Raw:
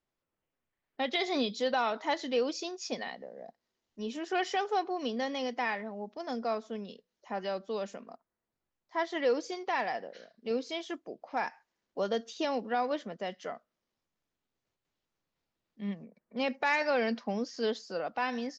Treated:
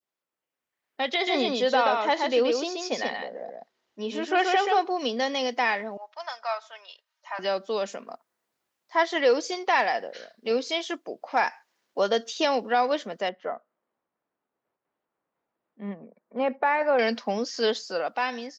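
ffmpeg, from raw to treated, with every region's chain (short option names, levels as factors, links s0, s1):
-filter_complex "[0:a]asettb=1/sr,asplit=3[s0][s1][s2];[s0]atrim=end=1.144[s3];[s1]atrim=start=1.14:end=4.82,asetpts=PTS-STARTPTS,afade=t=in:d=0.004:c=qsin,afade=t=out:st=3.676:d=0.004:c=qsin,lowpass=f=2800:p=1,aecho=1:1:130:0.668,atrim=end_sample=162288[s4];[s2]atrim=start=4.816[s5];[s3][s4]acrossfade=d=0.004:c1=hsin:c2=qsin[s6];[s6][s5]acrossfade=d=0.004:c1=qsin:c2=hsin,asettb=1/sr,asplit=3[s7][s8][s9];[s7]atrim=end=5.974[s10];[s8]atrim=start=5.97:end=7.39,asetpts=PTS-STARTPTS,afade=t=in:d=0.004:c=qsin,afade=t=out:st=1.416:d=0.004:c=qsin,highpass=f=860:w=0.5412,highpass=f=860:w=1.3066,highshelf=f=3600:g=-9.5,aecho=1:1:3.2:0.56,atrim=end_sample=62622[s11];[s9]atrim=start=7.386[s12];[s10][s11]acrossfade=d=0.004:c1=hsin:c2=qsin[s13];[s13][s12]acrossfade=d=0.004:c1=qsin:c2=hsin,asettb=1/sr,asplit=3[s14][s15][s16];[s14]atrim=end=13.294[s17];[s15]atrim=start=13.29:end=16.99,asetpts=PTS-STARTPTS,afade=t=in:d=0.004:c=qsin,afade=t=out:st=3.696:d=0.004:c=qsin,lowpass=1200,equalizer=f=68:t=o:w=1.9:g=-5.5[s18];[s16]atrim=start=16.986[s19];[s17][s18]acrossfade=d=0.004:c1=hsin:c2=qsin[s20];[s20][s19]acrossfade=d=0.004:c1=qsin:c2=hsin,highpass=f=550:p=1,adynamicequalizer=threshold=0.00447:dfrequency=1400:dqfactor=0.72:tfrequency=1400:tqfactor=0.72:attack=5:release=100:ratio=0.375:range=2:mode=cutabove:tftype=bell,dynaudnorm=f=420:g=5:m=3.55"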